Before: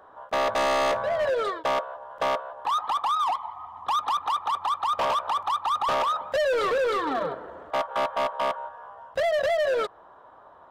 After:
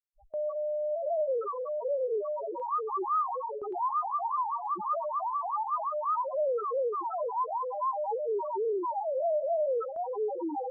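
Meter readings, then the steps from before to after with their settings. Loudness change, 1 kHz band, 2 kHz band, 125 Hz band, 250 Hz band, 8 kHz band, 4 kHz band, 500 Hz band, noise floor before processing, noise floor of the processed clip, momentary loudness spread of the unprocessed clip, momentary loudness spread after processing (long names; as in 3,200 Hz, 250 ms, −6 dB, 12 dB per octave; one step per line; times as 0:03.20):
−5.0 dB, −5.0 dB, below −40 dB, below −15 dB, −2.5 dB, below −35 dB, below −40 dB, −3.0 dB, −51 dBFS, −38 dBFS, 9 LU, 4 LU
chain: delay with pitch and tempo change per echo 584 ms, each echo −3 semitones, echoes 3, each echo −6 dB
comparator with hysteresis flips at −38 dBFS
low-shelf EQ 310 Hz −10 dB
spectral peaks only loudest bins 1
noise gate with hold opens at −37 dBFS
level +6.5 dB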